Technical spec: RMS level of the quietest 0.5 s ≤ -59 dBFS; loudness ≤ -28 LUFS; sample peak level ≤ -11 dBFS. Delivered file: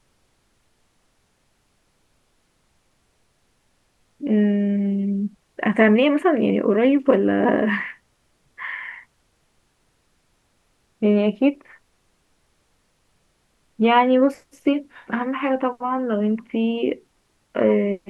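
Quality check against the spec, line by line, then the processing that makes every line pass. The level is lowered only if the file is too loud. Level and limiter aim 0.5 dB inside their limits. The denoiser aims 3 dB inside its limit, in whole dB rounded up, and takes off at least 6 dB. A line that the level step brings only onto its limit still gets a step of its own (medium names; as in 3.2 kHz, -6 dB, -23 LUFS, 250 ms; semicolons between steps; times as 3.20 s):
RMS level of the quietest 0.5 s -65 dBFS: pass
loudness -20.5 LUFS: fail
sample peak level -3.5 dBFS: fail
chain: trim -8 dB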